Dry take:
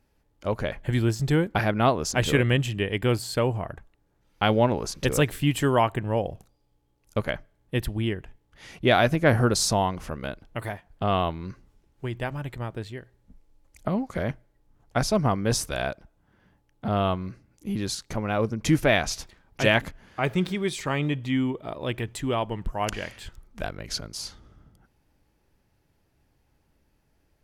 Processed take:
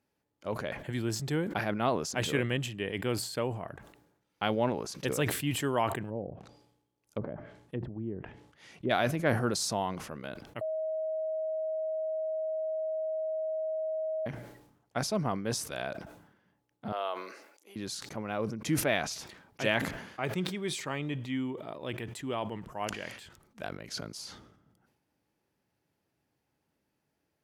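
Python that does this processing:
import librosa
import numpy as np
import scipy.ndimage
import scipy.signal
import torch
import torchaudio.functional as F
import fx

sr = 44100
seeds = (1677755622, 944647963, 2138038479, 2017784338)

y = fx.env_lowpass_down(x, sr, base_hz=450.0, full_db=-23.0, at=(6.09, 8.89), fade=0.02)
y = fx.highpass(y, sr, hz=460.0, slope=24, at=(16.92, 17.76))
y = fx.edit(y, sr, fx.bleep(start_s=10.61, length_s=3.65, hz=633.0, db=-22.0), tone=tone)
y = scipy.signal.sosfilt(scipy.signal.butter(2, 140.0, 'highpass', fs=sr, output='sos'), y)
y = fx.sustainer(y, sr, db_per_s=67.0)
y = F.gain(torch.from_numpy(y), -8.0).numpy()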